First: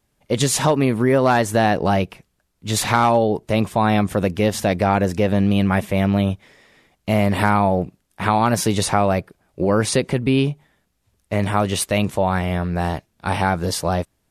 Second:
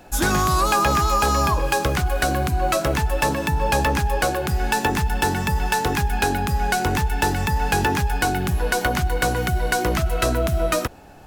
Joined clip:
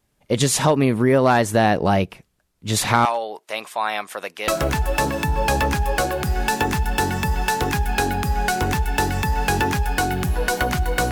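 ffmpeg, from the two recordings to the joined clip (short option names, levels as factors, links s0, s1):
-filter_complex "[0:a]asettb=1/sr,asplit=3[s0][s1][s2];[s0]atrim=end=3.054[s3];[s1]atrim=start=3.05:end=4.48,asetpts=PTS-STARTPTS,afade=t=in:d=0.004:c=qsin,afade=t=out:st=1.426:d=0.004:c=qsin,highpass=910[s4];[s2]atrim=start=4.476[s5];[s3][s4]acrossfade=d=0.004:c1=hsin:c2=qsin[s6];[s6][s5]acrossfade=d=0.004:c1=qsin:c2=hsin,apad=whole_dur=11.11,atrim=end=11.11,atrim=end=4.482[s7];[1:a]atrim=start=2.718:end=9.35[s8];[s7][s8]acrossfade=d=0.004:c1=hsin:c2=hsin"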